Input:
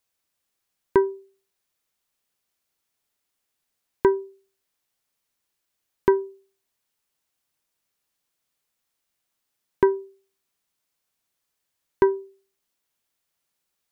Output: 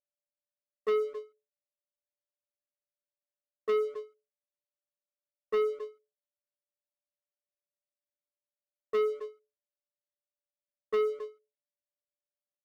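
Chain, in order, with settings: sine-wave speech; reverse; compressor 6:1, threshold -25 dBFS, peak gain reduction 11 dB; reverse; whine 530 Hz -52 dBFS; varispeed +10%; notch 590 Hz, Q 12; gate -53 dBFS, range -29 dB; echo 0.265 s -18 dB; sample leveller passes 3; ending taper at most 230 dB/s; gain -4 dB

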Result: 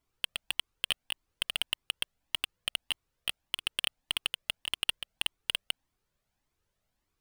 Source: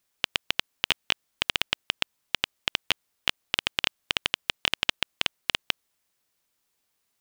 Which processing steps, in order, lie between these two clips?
sample leveller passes 5; pump 84 bpm, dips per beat 2, -12 dB, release 0.148 s; added noise pink -71 dBFS; cascading flanger rising 1.7 Hz; gain -7 dB

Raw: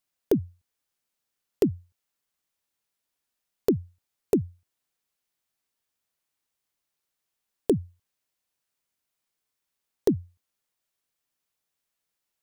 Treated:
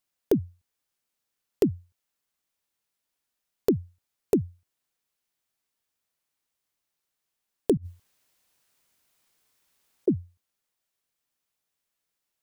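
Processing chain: 7.77–10.08 negative-ratio compressor -47 dBFS, ratio -1

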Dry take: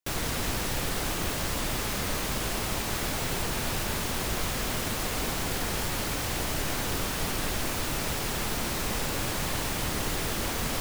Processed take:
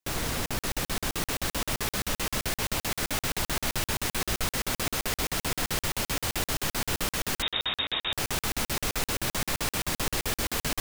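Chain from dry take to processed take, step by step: thin delay 0.526 s, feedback 78%, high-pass 1400 Hz, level -3.5 dB; 7.42–8.13 inverted band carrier 3700 Hz; crackling interface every 0.13 s, samples 2048, zero, from 0.46

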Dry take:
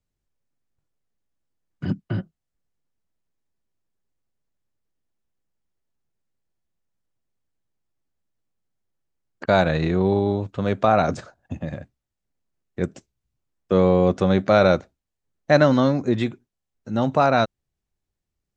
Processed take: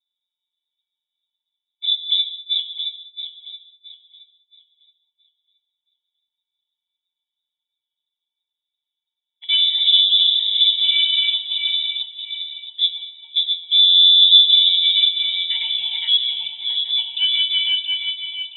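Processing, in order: regenerating reverse delay 0.336 s, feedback 55%, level -1 dB; octave resonator F, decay 0.18 s; treble ducked by the level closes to 640 Hz, closed at -21.5 dBFS; HPF 82 Hz 12 dB/oct; in parallel at -12 dB: soft clip -31.5 dBFS, distortion -7 dB; on the sum: bell 220 Hz +13 dB 0.41 oct; notch 790 Hz, Q 20; inverted band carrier 3700 Hz; non-linear reverb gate 0.23 s flat, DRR 12 dB; gain +7 dB

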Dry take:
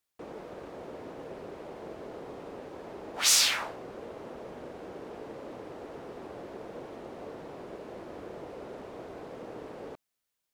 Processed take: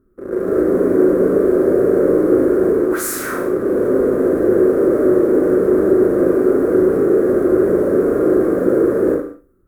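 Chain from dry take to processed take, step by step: on a send: flutter echo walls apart 7.1 m, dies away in 0.5 s; on the sum: AGC gain up to 12 dB; in parallel at -9.5 dB: fuzz box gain 41 dB, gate -35 dBFS; on the sum: bell 1200 Hz -10 dB 0.28 oct; added noise brown -59 dBFS; speed mistake 44.1 kHz file played as 48 kHz; EQ curve 150 Hz 0 dB, 390 Hz +13 dB, 890 Hz -17 dB, 1300 Hz +9 dB, 2800 Hz -28 dB, 5200 Hz -24 dB, 11000 Hz -5 dB; non-linear reverb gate 0.22 s falling, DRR 4.5 dB

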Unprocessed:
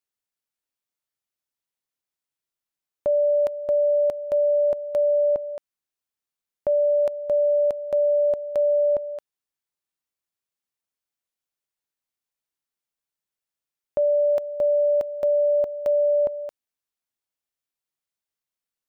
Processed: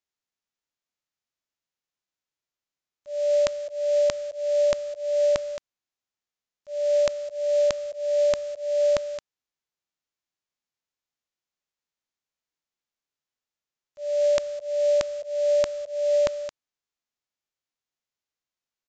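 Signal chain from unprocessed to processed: spectral whitening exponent 0.3; auto swell 0.296 s; downsampling 16000 Hz

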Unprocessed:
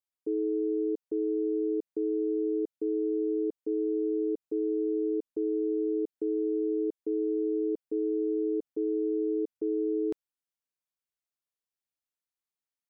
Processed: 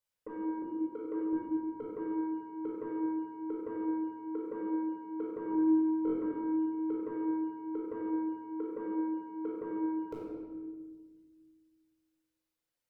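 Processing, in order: notch 430 Hz, Q 14; reverb removal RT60 1.2 s; 0.62–1.33 Bessel high-pass 320 Hz, order 4; bell 500 Hz +7.5 dB 0.29 oct; in parallel at +1 dB: level quantiser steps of 9 dB; on the sum: limiter -26.5 dBFS, peak gain reduction 8 dB; soft clip -33 dBFS, distortion -14 dB; 5.46–6.13 flutter echo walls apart 3.8 m, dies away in 1 s; reverb RT60 1.5 s, pre-delay 16 ms, DRR -5 dB; gain -5 dB

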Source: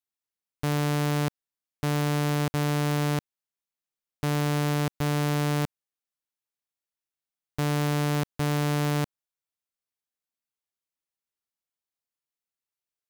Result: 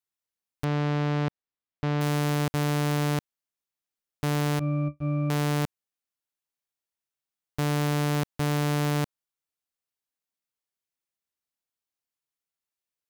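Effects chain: 0.64–2.01 air absorption 190 m; 4.59–5.3 octave resonator D, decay 0.13 s

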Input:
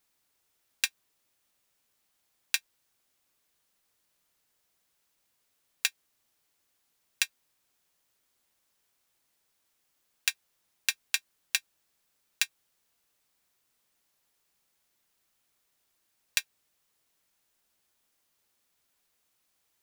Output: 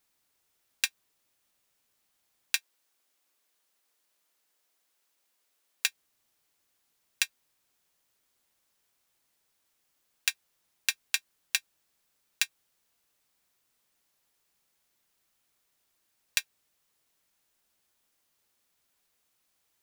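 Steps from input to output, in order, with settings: 2.56–5.88 HPF 280 Hz 12 dB/oct

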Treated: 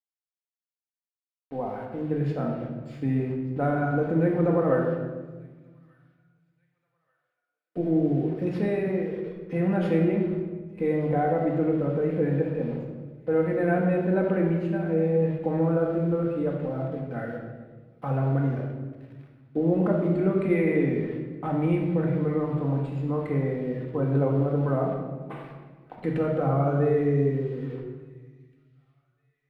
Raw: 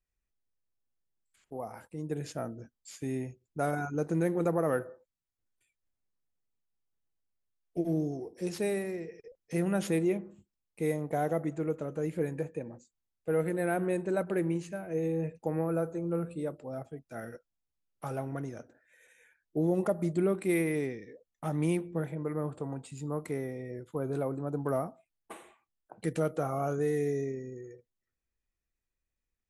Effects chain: high shelf 8600 Hz +4 dB; in parallel at +0.5 dB: limiter -27 dBFS, peak gain reduction 10.5 dB; on the sum: requantised 8-bit, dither none; air absorption 470 m; on a send: thin delay 1.185 s, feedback 37%, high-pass 2600 Hz, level -20.5 dB; on the sum: shoebox room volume 1100 m³, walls mixed, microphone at 2 m

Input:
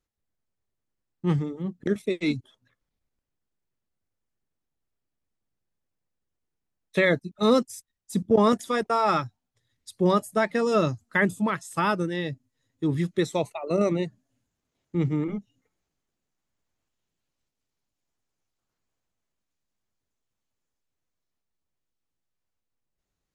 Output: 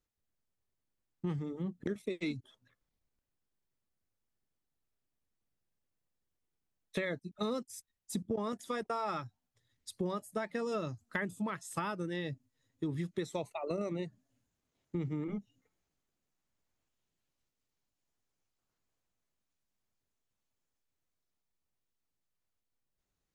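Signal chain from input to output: compressor 6:1, threshold -30 dBFS, peak gain reduction 14.5 dB; gain -3 dB

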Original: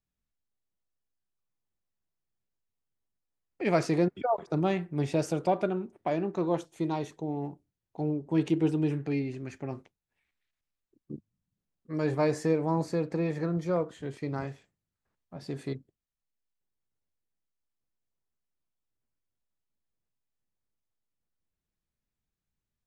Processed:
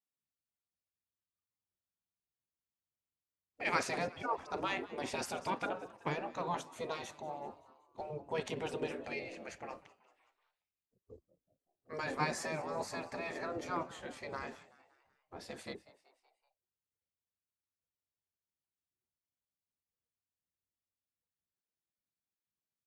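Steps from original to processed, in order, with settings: frequency-shifting echo 0.189 s, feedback 53%, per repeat +92 Hz, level -20 dB; spectral noise reduction 11 dB; spectral gate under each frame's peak -10 dB weak; gain +1.5 dB

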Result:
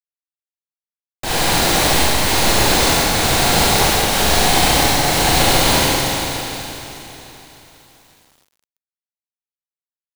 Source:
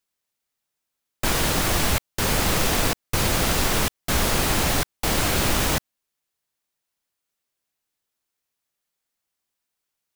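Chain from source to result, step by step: thirty-one-band EQ 200 Hz -4 dB, 800 Hz +6 dB, 1250 Hz -4 dB, 4000 Hz +5 dB, 16000 Hz -7 dB; Schroeder reverb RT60 3.6 s, combs from 32 ms, DRR -10 dB; bit-crush 8-bit; low shelf 86 Hz -5.5 dB; gain -2 dB

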